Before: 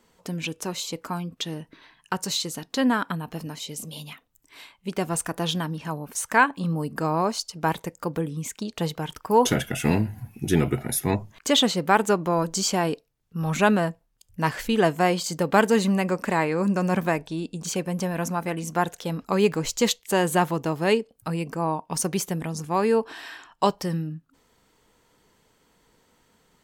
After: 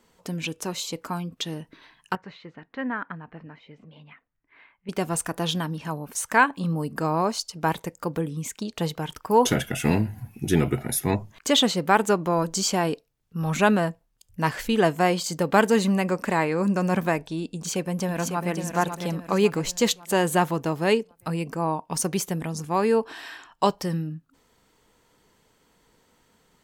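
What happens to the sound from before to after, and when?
2.15–4.89 ladder low-pass 2300 Hz, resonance 45%
17.48–18.51 echo throw 0.55 s, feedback 45%, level -7 dB

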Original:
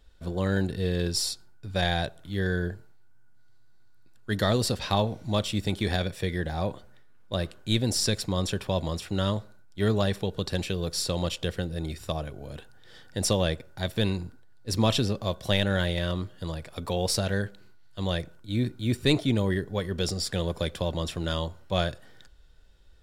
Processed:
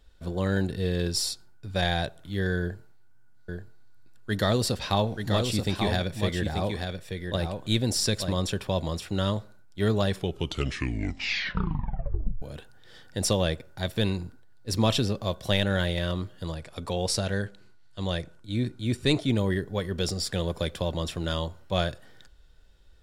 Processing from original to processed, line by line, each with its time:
2.6–8.38 echo 0.883 s -5.5 dB
10.08 tape stop 2.34 s
16.53–19.29 Chebyshev low-pass 9500 Hz

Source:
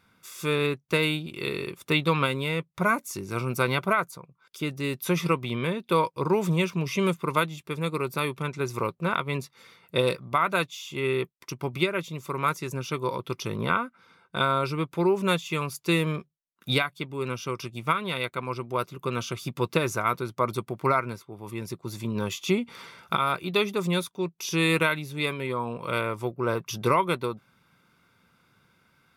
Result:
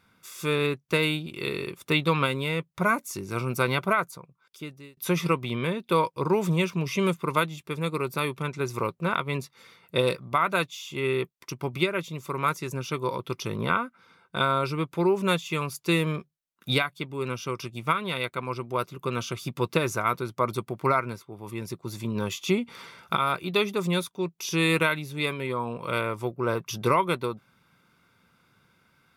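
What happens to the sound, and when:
4.15–4.97 fade out

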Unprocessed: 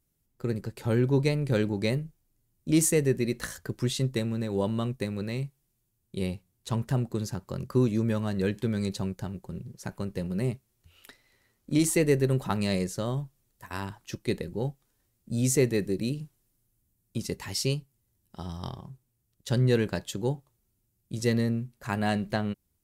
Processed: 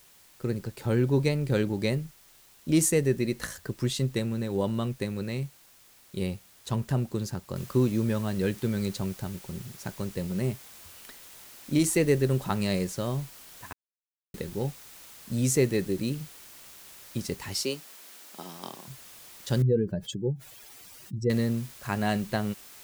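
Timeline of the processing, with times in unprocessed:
7.56 noise floor step -57 dB -49 dB
13.73–14.34 mute
17.63–18.88 HPF 220 Hz 24 dB/oct
19.62–21.3 spectral contrast raised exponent 2.2

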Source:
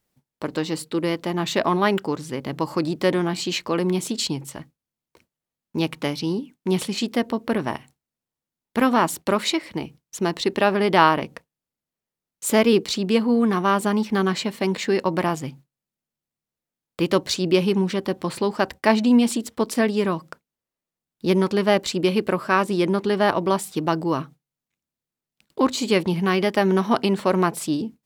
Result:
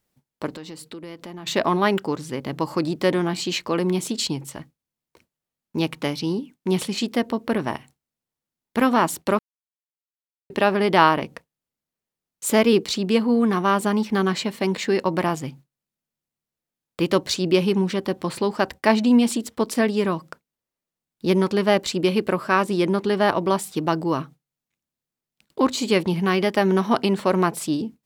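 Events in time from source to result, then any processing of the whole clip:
0.53–1.47 compressor 5:1, threshold -35 dBFS
9.39–10.5 mute

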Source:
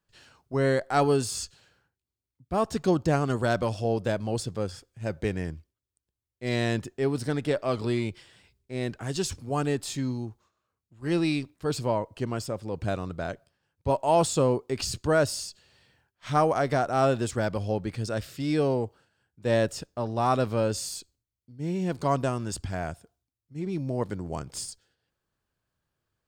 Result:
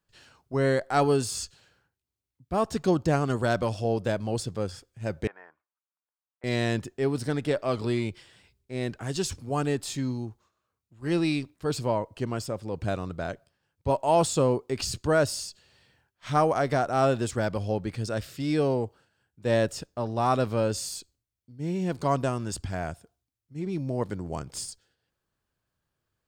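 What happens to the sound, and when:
5.27–6.44 Butterworth band-pass 1100 Hz, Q 1.4

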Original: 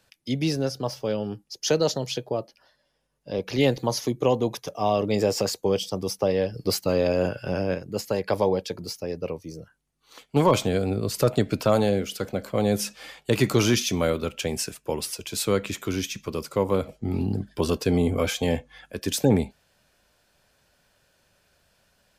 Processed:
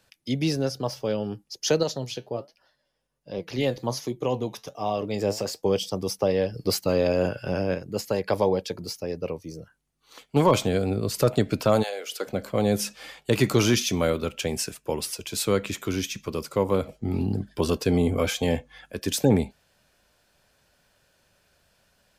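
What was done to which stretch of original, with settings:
1.83–5.63 flange 1.3 Hz, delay 5.1 ms, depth 5.1 ms, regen +75%
11.82–12.26 HPF 800 Hz -> 290 Hz 24 dB/oct

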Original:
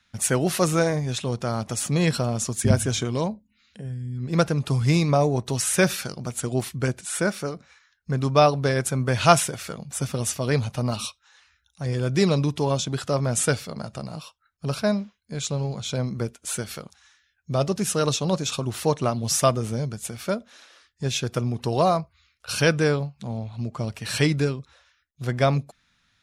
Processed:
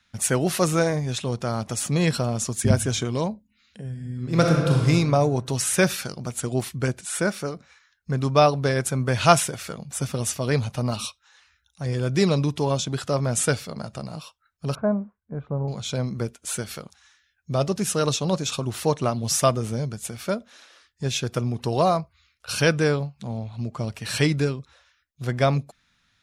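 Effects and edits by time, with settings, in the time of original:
3.9–4.8 reverb throw, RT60 1.6 s, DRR -1 dB
14.75–15.68 LPF 1300 Hz 24 dB/oct

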